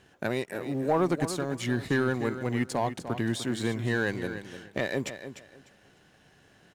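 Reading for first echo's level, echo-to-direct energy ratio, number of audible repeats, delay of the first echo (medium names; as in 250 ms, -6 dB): -11.0 dB, -11.0 dB, 2, 299 ms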